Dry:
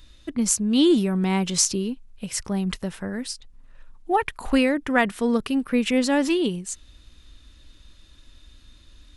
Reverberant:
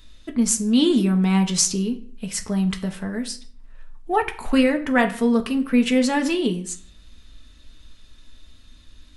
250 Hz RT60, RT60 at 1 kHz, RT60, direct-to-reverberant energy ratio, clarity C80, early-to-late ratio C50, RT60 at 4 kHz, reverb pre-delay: 0.55 s, 0.45 s, 0.45 s, 4.0 dB, 18.0 dB, 14.5 dB, 0.40 s, 4 ms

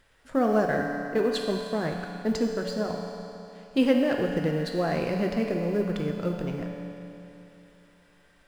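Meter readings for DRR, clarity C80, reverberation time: 1.0 dB, 3.5 dB, 3.0 s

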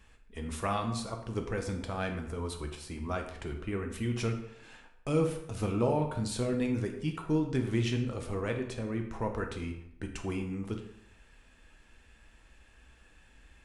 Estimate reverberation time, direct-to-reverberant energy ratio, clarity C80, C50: 0.70 s, 3.0 dB, 10.0 dB, 7.5 dB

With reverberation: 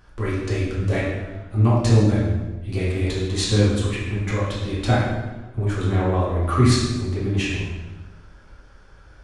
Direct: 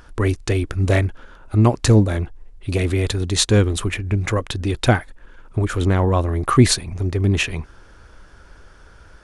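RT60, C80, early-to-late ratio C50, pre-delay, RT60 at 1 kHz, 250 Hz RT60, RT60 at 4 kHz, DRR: 1.2 s, 3.0 dB, 0.0 dB, 4 ms, 1.1 s, 1.4 s, 0.95 s, -8.5 dB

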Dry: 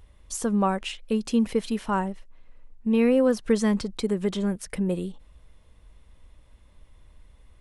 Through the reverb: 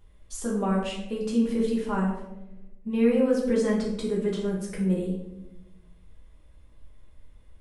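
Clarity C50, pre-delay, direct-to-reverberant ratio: 3.5 dB, 5 ms, -4.5 dB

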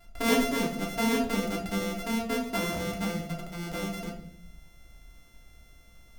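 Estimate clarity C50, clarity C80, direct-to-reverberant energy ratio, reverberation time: 8.0 dB, 11.5 dB, -2.0 dB, 0.60 s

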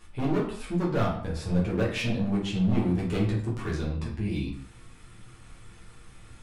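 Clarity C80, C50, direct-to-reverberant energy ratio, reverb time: 9.5 dB, 5.5 dB, -6.0 dB, not exponential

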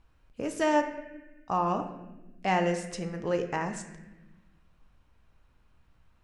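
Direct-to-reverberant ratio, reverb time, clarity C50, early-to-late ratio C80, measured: 5.0 dB, 1.1 s, 8.5 dB, 10.5 dB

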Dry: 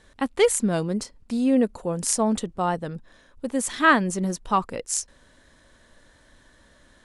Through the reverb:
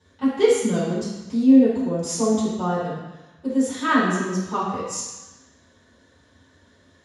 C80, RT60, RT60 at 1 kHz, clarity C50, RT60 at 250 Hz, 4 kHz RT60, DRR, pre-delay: 2.5 dB, 1.1 s, 1.2 s, -0.5 dB, 1.0 s, 1.2 s, -14.0 dB, 3 ms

